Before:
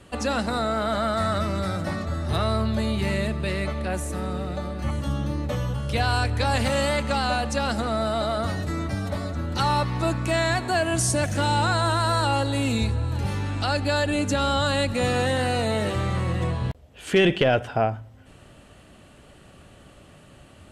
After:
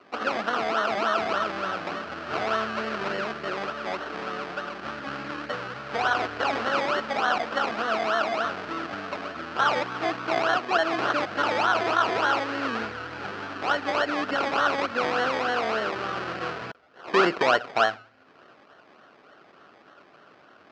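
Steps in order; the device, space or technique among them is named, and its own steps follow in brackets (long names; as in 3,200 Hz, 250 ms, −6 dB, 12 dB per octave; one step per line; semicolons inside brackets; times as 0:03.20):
circuit-bent sampling toy (sample-and-hold swept by an LFO 25×, swing 60% 3.4 Hz; loudspeaker in its box 480–4,200 Hz, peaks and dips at 550 Hz −5 dB, 900 Hz −6 dB, 1,400 Hz +7 dB, 2,100 Hz −5 dB, 3,600 Hz −7 dB)
level +3.5 dB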